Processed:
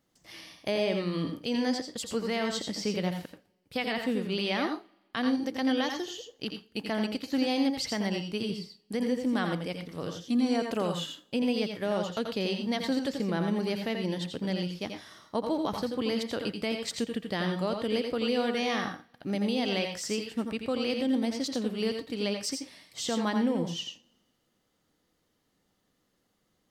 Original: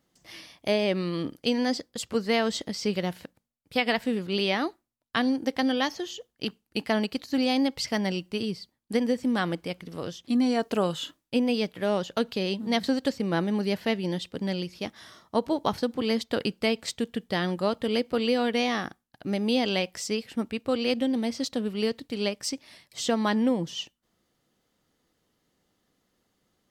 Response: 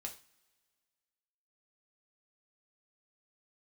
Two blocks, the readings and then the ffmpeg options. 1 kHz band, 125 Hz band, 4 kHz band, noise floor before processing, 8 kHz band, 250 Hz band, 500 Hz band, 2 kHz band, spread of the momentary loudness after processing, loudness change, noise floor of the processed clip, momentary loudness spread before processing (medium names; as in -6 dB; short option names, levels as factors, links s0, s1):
-3.5 dB, -1.5 dB, -2.5 dB, -77 dBFS, -1.5 dB, -2.5 dB, -3.5 dB, -3.5 dB, 9 LU, -3.0 dB, -75 dBFS, 10 LU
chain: -filter_complex "[0:a]alimiter=limit=0.141:level=0:latency=1,asplit=2[s0][s1];[1:a]atrim=start_sample=2205,asetrate=66150,aresample=44100,adelay=84[s2];[s1][s2]afir=irnorm=-1:irlink=0,volume=1.26[s3];[s0][s3]amix=inputs=2:normalize=0,volume=0.75"